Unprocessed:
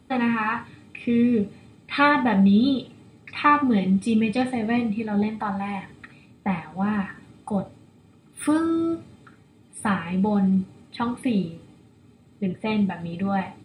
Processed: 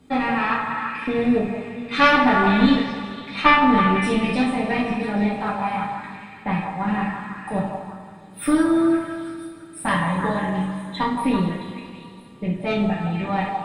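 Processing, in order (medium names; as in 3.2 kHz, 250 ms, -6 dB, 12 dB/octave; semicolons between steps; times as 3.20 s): 9.88–11.03 s: rippled EQ curve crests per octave 1.1, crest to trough 14 dB; Chebyshev shaper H 2 -6 dB, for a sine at -6.5 dBFS; repeats whose band climbs or falls 167 ms, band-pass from 790 Hz, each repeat 0.7 oct, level -2.5 dB; reverberation, pre-delay 3 ms, DRR -3 dB; trim -1.5 dB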